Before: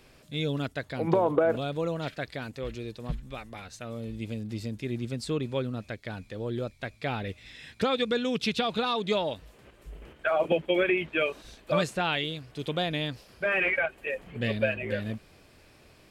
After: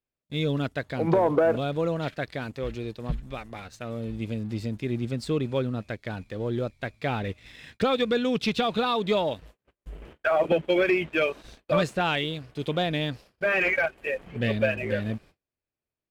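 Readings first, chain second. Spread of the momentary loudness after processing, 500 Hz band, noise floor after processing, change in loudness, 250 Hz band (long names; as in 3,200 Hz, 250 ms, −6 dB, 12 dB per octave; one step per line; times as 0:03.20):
13 LU, +3.0 dB, below −85 dBFS, +2.5 dB, +3.5 dB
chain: noise gate −50 dBFS, range −34 dB
high-shelf EQ 3,800 Hz −6.5 dB
leveller curve on the samples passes 1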